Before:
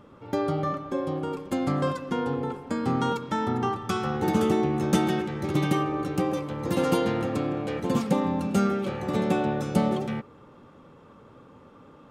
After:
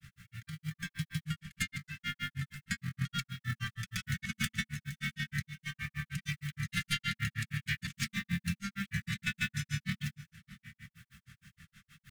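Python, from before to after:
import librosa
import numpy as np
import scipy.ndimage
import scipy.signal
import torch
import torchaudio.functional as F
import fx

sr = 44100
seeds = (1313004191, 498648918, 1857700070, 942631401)

y = fx.tracing_dist(x, sr, depth_ms=0.077)
y = scipy.signal.sosfilt(scipy.signal.ellip(3, 1.0, 40, [160.0, 1900.0], 'bandstop', fs=sr, output='sos'), y)
y = fx.band_shelf(y, sr, hz=1100.0, db=11.5, octaves=1.7)
y = fx.quant_companded(y, sr, bits=6)
y = fx.over_compress(y, sr, threshold_db=-34.0, ratio=-0.5)
y = fx.hum_notches(y, sr, base_hz=50, count=3)
y = y + 10.0 ** (-17.5 / 20.0) * np.pad(y, (int(604 * sr / 1000.0), 0))[:len(y)]
y = fx.granulator(y, sr, seeds[0], grain_ms=117.0, per_s=6.4, spray_ms=100.0, spread_st=0)
y = fx.curve_eq(y, sr, hz=(220.0, 660.0, 2200.0), db=(0, -16, 3))
y = F.gain(torch.from_numpy(y), 4.0).numpy()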